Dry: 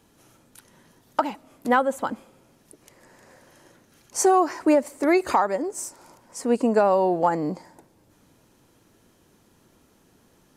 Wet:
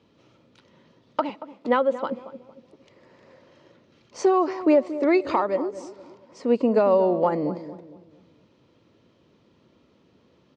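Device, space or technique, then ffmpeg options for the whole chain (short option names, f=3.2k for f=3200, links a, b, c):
guitar cabinet: -filter_complex "[0:a]asettb=1/sr,asplit=3[a][b][c];[a]atrim=end=1.294[d];[b]atrim=start=1.29:end=2.12,asetpts=PTS-STARTPTS,afade=t=in:d=0.004:c=qsin,afade=t=out:st=0.826:d=0.004:c=qsin,highpass=210[e];[c]atrim=start=2.116[f];[d][e]acrossfade=d=0.004:c1=hsin:c2=qsin[g];[g][f]acrossfade=d=0.004:c1=qsin:c2=hsin,highpass=80,equalizer=f=540:t=q:w=4:g=4,equalizer=f=780:t=q:w=4:g=-7,equalizer=f=1.6k:t=q:w=4:g=-8,lowpass=f=4.4k:w=0.5412,lowpass=f=4.4k:w=1.3066,asplit=2[h][i];[i]adelay=230,lowpass=f=820:p=1,volume=-12dB,asplit=2[j][k];[k]adelay=230,lowpass=f=820:p=1,volume=0.43,asplit=2[l][m];[m]adelay=230,lowpass=f=820:p=1,volume=0.43,asplit=2[n][o];[o]adelay=230,lowpass=f=820:p=1,volume=0.43[p];[h][j][l][n][p]amix=inputs=5:normalize=0"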